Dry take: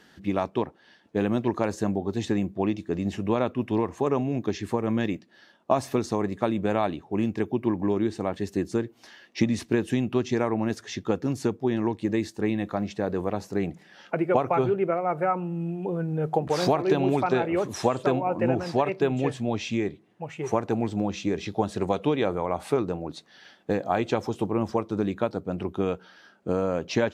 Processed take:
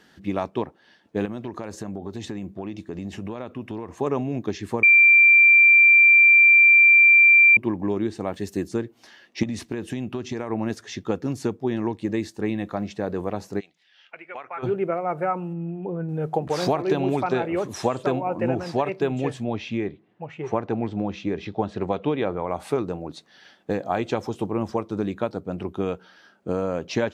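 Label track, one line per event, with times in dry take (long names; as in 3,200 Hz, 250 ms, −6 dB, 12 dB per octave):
1.250000	3.960000	downward compressor 5 to 1, threshold −28 dBFS
4.830000	7.570000	beep over 2,360 Hz −10 dBFS
8.280000	8.690000	high-shelf EQ 7,100 Hz +9 dB
9.430000	10.500000	downward compressor, threshold −24 dBFS
13.590000	14.620000	resonant band-pass 4,400 Hz → 1,600 Hz, Q 2.1
15.530000	16.090000	high-frequency loss of the air 390 metres
19.440000	22.470000	low-pass filter 3,500 Hz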